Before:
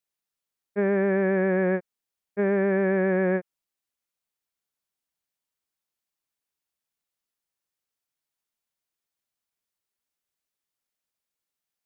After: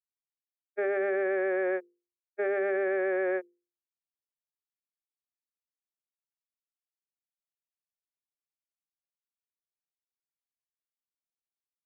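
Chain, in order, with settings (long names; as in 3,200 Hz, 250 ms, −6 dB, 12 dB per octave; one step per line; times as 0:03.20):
downward expander −23 dBFS
Butterworth high-pass 340 Hz 36 dB per octave
mains-hum notches 50/100/150/200/250/300/350/400/450/500 Hz
brickwall limiter −22 dBFS, peak gain reduction 5 dB
Butterworth band-reject 1,000 Hz, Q 4.5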